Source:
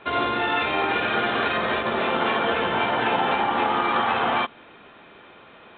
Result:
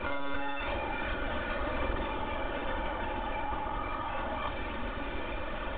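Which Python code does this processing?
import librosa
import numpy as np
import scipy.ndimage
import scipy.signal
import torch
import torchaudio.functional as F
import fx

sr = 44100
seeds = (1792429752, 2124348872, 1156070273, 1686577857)

p1 = fx.fold_sine(x, sr, drive_db=8, ceiling_db=-9.0)
p2 = x + (p1 * librosa.db_to_amplitude(-12.0))
p3 = fx.lpc_monotone(p2, sr, seeds[0], pitch_hz=140.0, order=16)
p4 = fx.over_compress(p3, sr, threshold_db=-29.0, ratio=-1.0)
p5 = fx.tilt_eq(p4, sr, slope=-1.5)
p6 = p5 + 0.69 * np.pad(p5, (int(3.4 * sr / 1000.0), 0))[:len(p5)]
p7 = fx.room_flutter(p6, sr, wall_m=7.9, rt60_s=0.32)
y = p7 * librosa.db_to_amplitude(-8.5)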